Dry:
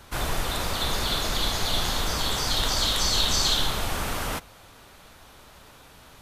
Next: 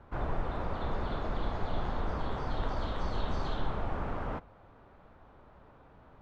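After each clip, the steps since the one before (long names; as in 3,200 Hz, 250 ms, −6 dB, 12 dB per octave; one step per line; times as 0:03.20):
low-pass filter 1,100 Hz 12 dB per octave
level −4 dB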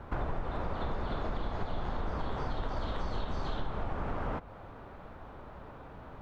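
downward compressor 5 to 1, threshold −40 dBFS, peak gain reduction 13.5 dB
level +9 dB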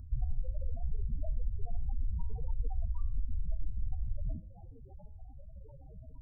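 spectral peaks only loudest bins 4
Butterworth band-reject 2,500 Hz, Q 0.83
hum removal 105 Hz, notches 28
level +4 dB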